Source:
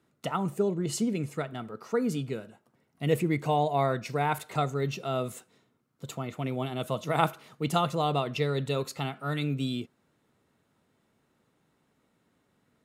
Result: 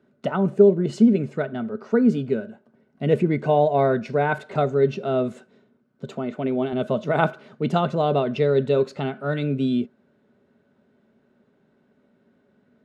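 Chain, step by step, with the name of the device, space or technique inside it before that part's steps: 6.07–6.73 HPF 160 Hz; inside a cardboard box (LPF 4300 Hz 12 dB/oct; small resonant body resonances 230/400/570/1500 Hz, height 14 dB, ringing for 45 ms)

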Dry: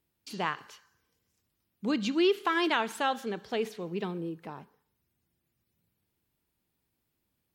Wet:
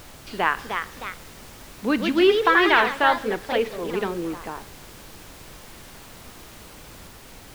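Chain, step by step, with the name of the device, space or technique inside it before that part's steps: horn gramophone (BPF 260–3100 Hz; bell 1700 Hz +4 dB; wow and flutter; pink noise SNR 18 dB); echoes that change speed 0.35 s, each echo +2 st, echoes 2, each echo -6 dB; gain +8.5 dB

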